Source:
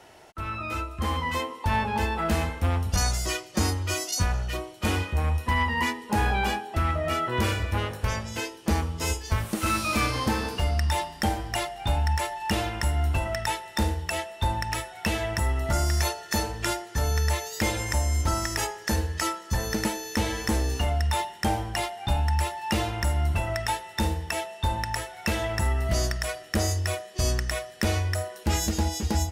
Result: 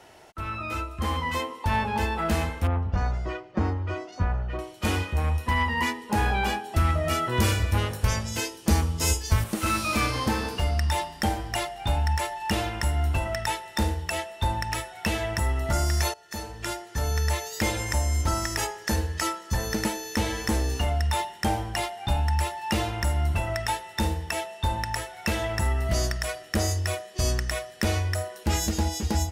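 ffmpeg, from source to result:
-filter_complex "[0:a]asettb=1/sr,asplit=3[s0][s1][s2];[s0]atrim=end=2.674[s3];[s1]atrim=start=2.67:end=4.59,asetpts=PTS-STARTPTS,afade=t=in:d=0.004:c=qsin,afade=t=out:st=1.916:d=0.004:c=qsin,lowpass=1500[s4];[s2]atrim=start=4.586[s5];[s3][s4]acrossfade=d=0.004:c1=hsin:c2=qsin[s6];[s6][s5]acrossfade=d=0.004:c1=qsin:c2=hsin,asettb=1/sr,asplit=3[s7][s8][s9];[s7]atrim=end=6.644[s10];[s8]atrim=start=6.64:end=9.44,asetpts=PTS-STARTPTS,afade=t=in:d=0.004:c=qsin,afade=t=out:st=2.796:d=0.004:c=qsin,bass=f=250:g=4,treble=f=4000:g=7[s11];[s9]atrim=start=9.436[s12];[s10][s11]acrossfade=d=0.004:c1=hsin:c2=qsin[s13];[s13][s12]acrossfade=d=0.004:c1=qsin:c2=hsin,asplit=2[s14][s15];[s14]atrim=end=16.14,asetpts=PTS-STARTPTS,afade=t=out:st=16.136:d=0.004:c=hsin:silence=0.16788[s16];[s15]atrim=start=16.14,asetpts=PTS-STARTPTS,afade=t=in:d=1.5:c=qsin:silence=0.16788[s17];[s16][s17]concat=n=2:v=0:a=1"

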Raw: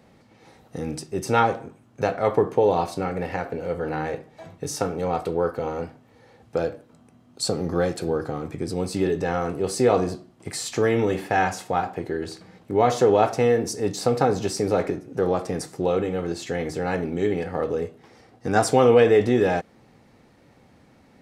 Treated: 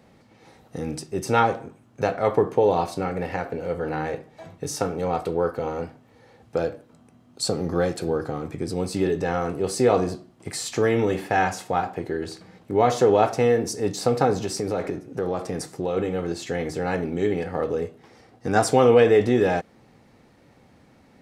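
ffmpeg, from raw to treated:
-filter_complex "[0:a]asettb=1/sr,asplit=3[s0][s1][s2];[s0]atrim=end=14.394[s3];[s1]atrim=start=14.39:end=15.97,asetpts=PTS-STARTPTS,afade=t=in:d=0.004:c=qsin,afade=t=out:st=1.576:d=0.004:c=qsin,acompressor=threshold=0.0631:ratio=2:attack=3.2:release=140:knee=1:detection=peak[s4];[s2]atrim=start=15.966[s5];[s3][s4]acrossfade=d=0.004:c1=hsin:c2=qsin[s6];[s6][s5]acrossfade=d=0.004:c1=qsin:c2=hsin"

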